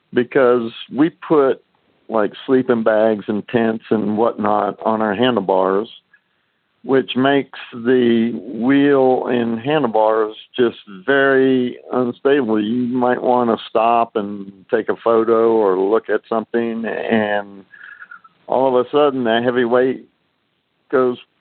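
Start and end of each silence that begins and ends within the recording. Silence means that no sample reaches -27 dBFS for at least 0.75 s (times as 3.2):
5.85–6.86
19.96–20.93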